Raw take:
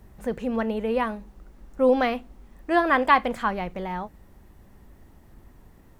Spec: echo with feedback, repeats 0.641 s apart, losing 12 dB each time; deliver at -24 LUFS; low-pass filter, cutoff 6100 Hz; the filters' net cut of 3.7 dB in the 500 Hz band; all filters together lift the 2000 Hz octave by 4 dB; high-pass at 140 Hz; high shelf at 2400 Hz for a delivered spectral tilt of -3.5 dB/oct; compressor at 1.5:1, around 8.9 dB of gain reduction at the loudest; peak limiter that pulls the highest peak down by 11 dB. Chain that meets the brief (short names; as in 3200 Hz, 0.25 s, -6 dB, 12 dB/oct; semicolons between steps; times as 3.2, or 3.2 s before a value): HPF 140 Hz; LPF 6100 Hz; bell 500 Hz -4.5 dB; bell 2000 Hz +3.5 dB; high shelf 2400 Hz +3.5 dB; compressor 1.5:1, threshold -36 dBFS; limiter -22.5 dBFS; feedback echo 0.641 s, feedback 25%, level -12 dB; gain +11 dB